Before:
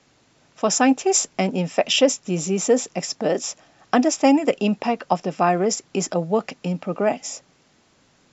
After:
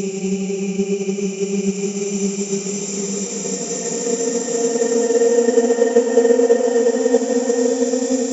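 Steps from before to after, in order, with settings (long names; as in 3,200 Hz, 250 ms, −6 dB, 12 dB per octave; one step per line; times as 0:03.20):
extreme stretch with random phases 28×, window 0.25 s, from 0:02.50
transient designer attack +4 dB, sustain −2 dB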